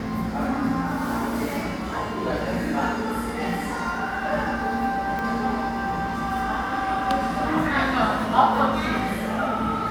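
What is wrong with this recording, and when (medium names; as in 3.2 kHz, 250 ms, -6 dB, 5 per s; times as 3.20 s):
5.19 s: pop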